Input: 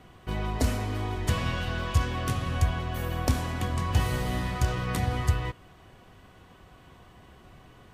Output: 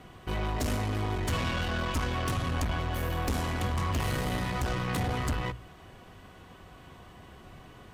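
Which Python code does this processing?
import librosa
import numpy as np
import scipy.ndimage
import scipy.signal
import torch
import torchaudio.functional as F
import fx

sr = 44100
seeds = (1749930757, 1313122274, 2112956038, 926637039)

y = fx.fold_sine(x, sr, drive_db=8, ceiling_db=-11.0)
y = fx.tube_stage(y, sr, drive_db=17.0, bias=0.45)
y = fx.hum_notches(y, sr, base_hz=60, count=2)
y = F.gain(torch.from_numpy(y), -7.5).numpy()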